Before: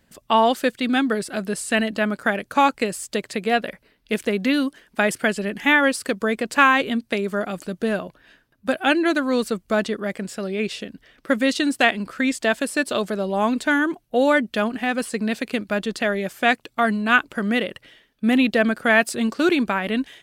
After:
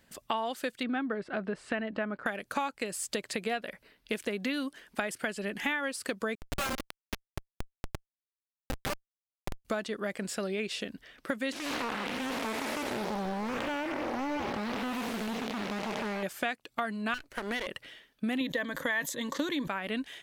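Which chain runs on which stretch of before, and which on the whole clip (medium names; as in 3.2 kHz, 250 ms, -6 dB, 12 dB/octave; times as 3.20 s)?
0.83–2.26 s: low-pass 1.8 kHz + tape noise reduction on one side only encoder only
6.35–9.65 s: comb filter that takes the minimum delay 5.1 ms + tilt EQ +3 dB/octave + Schmitt trigger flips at -15.5 dBFS
11.52–16.23 s: spectral blur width 404 ms + loudspeaker Doppler distortion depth 0.83 ms
17.14–17.67 s: comb filter that takes the minimum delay 0.47 ms + peaking EQ 180 Hz -14 dB 0.66 oct + compression 2:1, threshold -24 dBFS
18.40–19.68 s: rippled EQ curve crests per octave 1.1, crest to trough 13 dB + decay stretcher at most 110 dB/s
whole clip: bass shelf 400 Hz -5.5 dB; compression 6:1, threshold -30 dBFS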